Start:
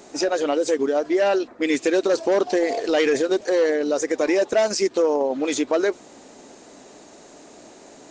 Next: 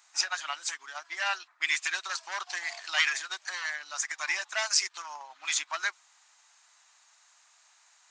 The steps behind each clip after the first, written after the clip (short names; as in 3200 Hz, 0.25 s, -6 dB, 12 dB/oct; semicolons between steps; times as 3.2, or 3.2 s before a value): inverse Chebyshev high-pass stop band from 520 Hz, stop band 40 dB; upward expander 1.5:1, over -51 dBFS; gain +3 dB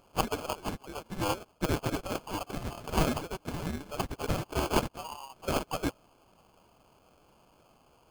sample-rate reducer 1900 Hz, jitter 0%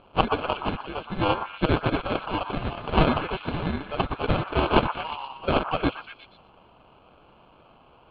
Chebyshev low-pass 4000 Hz, order 6; delay with a stepping band-pass 0.12 s, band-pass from 1200 Hz, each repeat 0.7 oct, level -5 dB; gain +8 dB